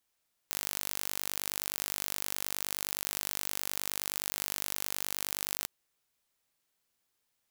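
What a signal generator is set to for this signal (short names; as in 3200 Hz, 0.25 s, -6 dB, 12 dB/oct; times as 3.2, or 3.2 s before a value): pulse train 49.6/s, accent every 0, -7 dBFS 5.15 s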